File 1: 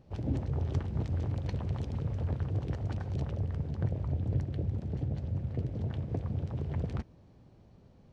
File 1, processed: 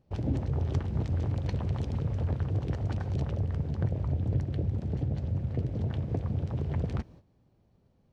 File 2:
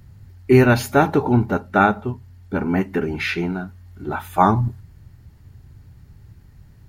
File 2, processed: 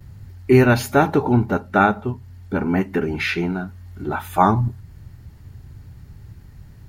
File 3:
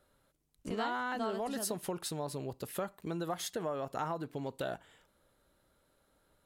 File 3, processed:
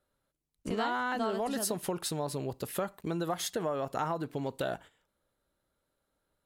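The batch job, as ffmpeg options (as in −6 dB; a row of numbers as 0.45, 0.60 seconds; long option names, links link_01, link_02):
-filter_complex "[0:a]agate=range=-13dB:threshold=-53dB:ratio=16:detection=peak,asplit=2[link_01][link_02];[link_02]acompressor=threshold=-32dB:ratio=6,volume=-1.5dB[link_03];[link_01][link_03]amix=inputs=2:normalize=0,volume=-1dB"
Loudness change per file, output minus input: +3.0, 0.0, +4.0 LU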